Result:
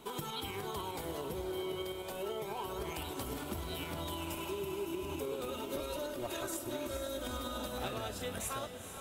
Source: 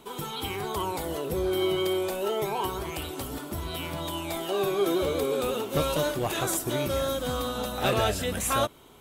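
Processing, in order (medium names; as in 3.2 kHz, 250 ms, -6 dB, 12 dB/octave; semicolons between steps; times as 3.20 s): 4.28–5.18 s: spectral replace 410–4800 Hz before; 5.48–7.66 s: comb 3.2 ms, depth 77%; compression 10:1, threshold -36 dBFS, peak gain reduction 16.5 dB; tremolo saw up 9.9 Hz, depth 40%; echo that smears into a reverb 459 ms, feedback 54%, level -8.5 dB; trim +1 dB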